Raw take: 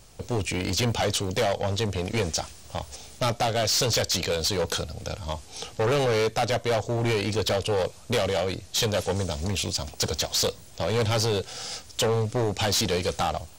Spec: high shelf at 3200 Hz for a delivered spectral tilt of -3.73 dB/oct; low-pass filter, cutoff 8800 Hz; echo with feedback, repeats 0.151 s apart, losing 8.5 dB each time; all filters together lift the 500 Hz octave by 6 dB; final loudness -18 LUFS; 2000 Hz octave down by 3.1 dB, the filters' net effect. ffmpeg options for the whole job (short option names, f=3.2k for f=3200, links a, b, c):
-af "lowpass=8.8k,equalizer=f=500:t=o:g=7,equalizer=f=2k:t=o:g=-6.5,highshelf=f=3.2k:g=5.5,aecho=1:1:151|302|453|604:0.376|0.143|0.0543|0.0206,volume=4dB"